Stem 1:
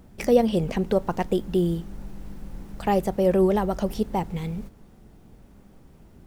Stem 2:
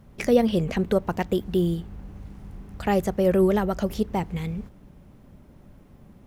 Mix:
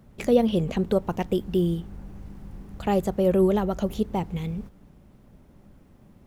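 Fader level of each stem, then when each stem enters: −9.5, −3.5 decibels; 0.00, 0.00 seconds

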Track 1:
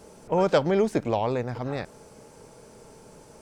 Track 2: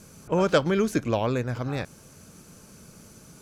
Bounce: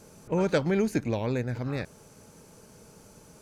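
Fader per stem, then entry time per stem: −7.0, −5.5 decibels; 0.00, 0.00 seconds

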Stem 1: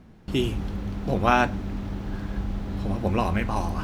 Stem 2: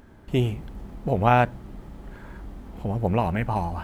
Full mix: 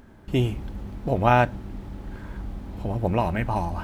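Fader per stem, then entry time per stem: −10.0, 0.0 decibels; 0.00, 0.00 seconds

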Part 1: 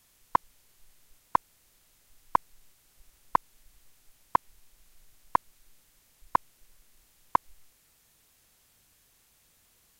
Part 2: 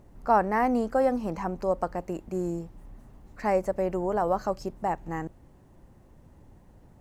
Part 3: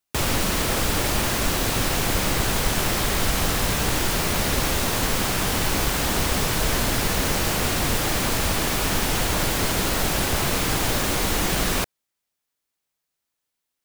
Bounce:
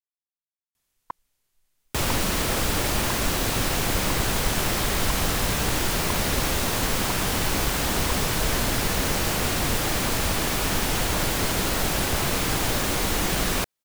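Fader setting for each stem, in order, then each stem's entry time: −12.0 dB, muted, −1.5 dB; 0.75 s, muted, 1.80 s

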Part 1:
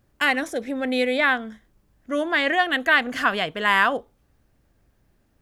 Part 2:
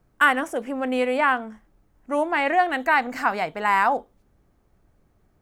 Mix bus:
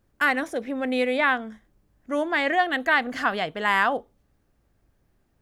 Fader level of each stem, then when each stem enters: −5.0, −9.5 decibels; 0.00, 0.00 seconds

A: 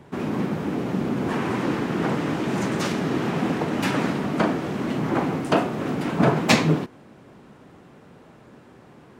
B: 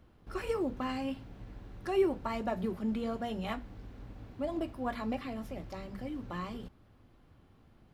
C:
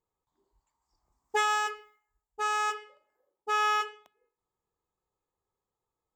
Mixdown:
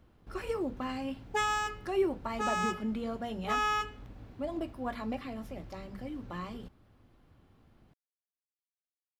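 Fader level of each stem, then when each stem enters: muted, −1.0 dB, −3.5 dB; muted, 0.00 s, 0.00 s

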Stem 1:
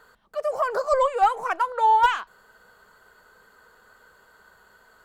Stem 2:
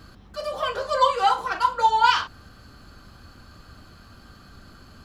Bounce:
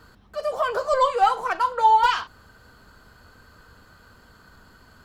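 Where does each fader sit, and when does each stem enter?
0.0, −6.5 decibels; 0.00, 0.00 seconds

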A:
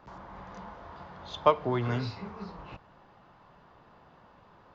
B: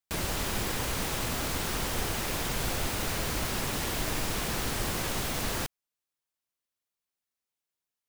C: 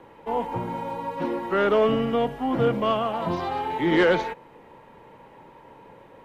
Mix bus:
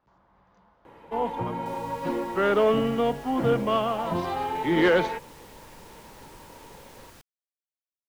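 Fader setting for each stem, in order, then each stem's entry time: −16.5, −19.0, −1.0 decibels; 0.00, 1.55, 0.85 seconds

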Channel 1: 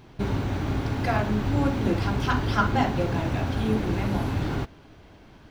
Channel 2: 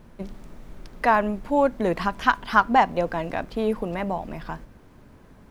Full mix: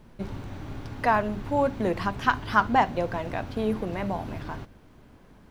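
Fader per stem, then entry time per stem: −11.0, −3.5 decibels; 0.00, 0.00 seconds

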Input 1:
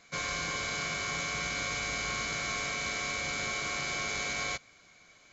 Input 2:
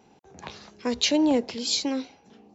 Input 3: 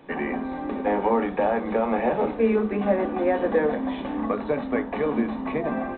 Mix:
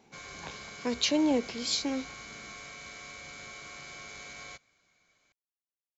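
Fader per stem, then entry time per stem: −11.5 dB, −4.5 dB, muted; 0.00 s, 0.00 s, muted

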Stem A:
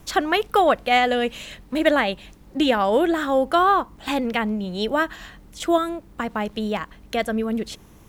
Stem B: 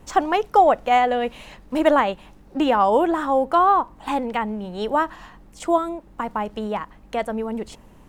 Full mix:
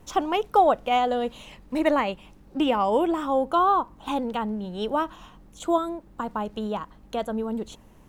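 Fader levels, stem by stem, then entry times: −13.0, −5.0 decibels; 0.00, 0.00 seconds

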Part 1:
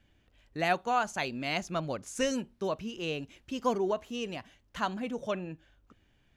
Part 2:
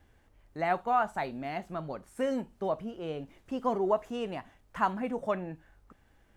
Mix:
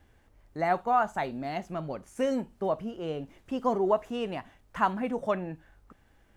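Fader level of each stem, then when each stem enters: −15.5, +1.5 decibels; 0.00, 0.00 seconds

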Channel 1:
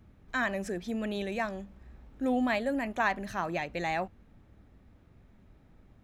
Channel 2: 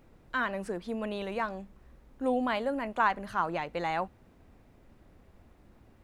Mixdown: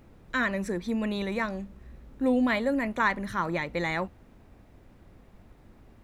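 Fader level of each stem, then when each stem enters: −0.5, +2.5 decibels; 0.00, 0.00 seconds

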